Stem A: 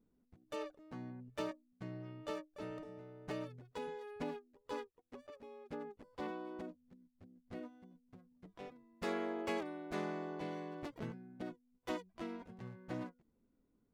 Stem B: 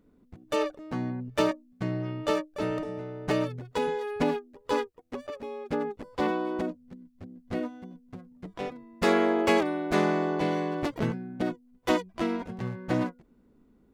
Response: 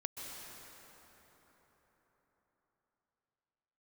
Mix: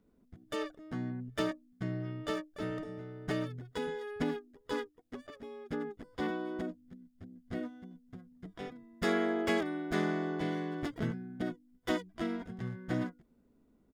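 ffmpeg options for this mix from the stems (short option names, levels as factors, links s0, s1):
-filter_complex "[0:a]equalizer=f=630:t=o:w=0.31:g=11,bandreject=f=99.84:t=h:w=4,bandreject=f=199.68:t=h:w=4,bandreject=f=299.52:t=h:w=4,volume=1.06[s0];[1:a]adelay=0.6,volume=0.422[s1];[s0][s1]amix=inputs=2:normalize=0"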